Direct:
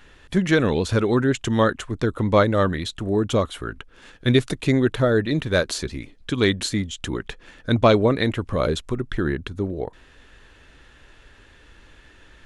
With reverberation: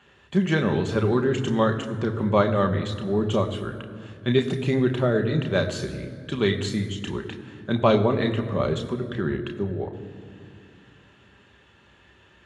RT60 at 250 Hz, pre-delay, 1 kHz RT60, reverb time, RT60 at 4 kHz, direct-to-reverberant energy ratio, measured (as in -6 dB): 3.4 s, 3 ms, 2.2 s, 2.4 s, 1.5 s, 4.0 dB